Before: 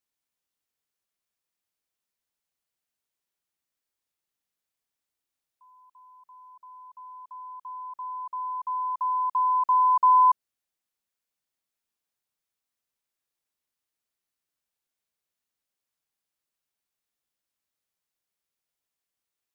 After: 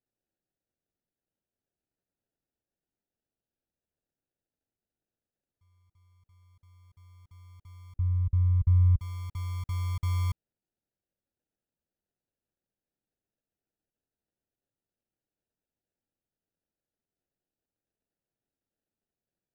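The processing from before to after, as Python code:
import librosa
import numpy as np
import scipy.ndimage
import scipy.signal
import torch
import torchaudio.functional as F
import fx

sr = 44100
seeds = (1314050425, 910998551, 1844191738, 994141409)

y = scipy.signal.sosfilt(scipy.signal.bessel(6, 860.0, 'highpass', norm='mag', fs=sr, output='sos'), x)
y = fx.sample_hold(y, sr, seeds[0], rate_hz=1100.0, jitter_pct=0)
y = fx.tilt_eq(y, sr, slope=-5.5, at=(7.96, 8.99))
y = y * 10.0 ** (-8.0 / 20.0)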